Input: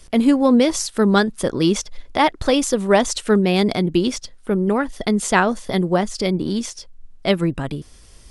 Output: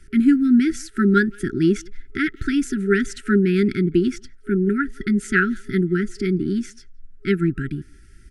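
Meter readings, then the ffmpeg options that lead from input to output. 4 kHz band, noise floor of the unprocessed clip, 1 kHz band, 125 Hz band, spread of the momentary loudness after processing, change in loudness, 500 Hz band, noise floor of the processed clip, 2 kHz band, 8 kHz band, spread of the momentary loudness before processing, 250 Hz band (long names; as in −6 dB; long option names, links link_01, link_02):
−12.0 dB, −46 dBFS, −9.5 dB, 0.0 dB, 10 LU, −1.5 dB, −4.5 dB, −47 dBFS, +1.0 dB, −11.5 dB, 10 LU, 0.0 dB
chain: -filter_complex "[0:a]highshelf=frequency=2400:width_type=q:width=1.5:gain=-10.5,asplit=2[link_01][link_02];[link_02]adelay=170,highpass=300,lowpass=3400,asoftclip=type=hard:threshold=-10dB,volume=-26dB[link_03];[link_01][link_03]amix=inputs=2:normalize=0,afftfilt=real='re*(1-between(b*sr/4096,410,1300))':imag='im*(1-between(b*sr/4096,410,1300))':win_size=4096:overlap=0.75"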